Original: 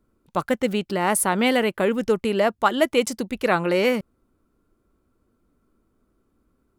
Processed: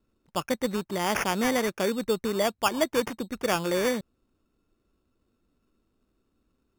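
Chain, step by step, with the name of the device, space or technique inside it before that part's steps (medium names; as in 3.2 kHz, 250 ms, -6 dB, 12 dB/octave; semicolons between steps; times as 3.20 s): crushed at another speed (playback speed 0.5×; sample-and-hold 22×; playback speed 2×); trim -5.5 dB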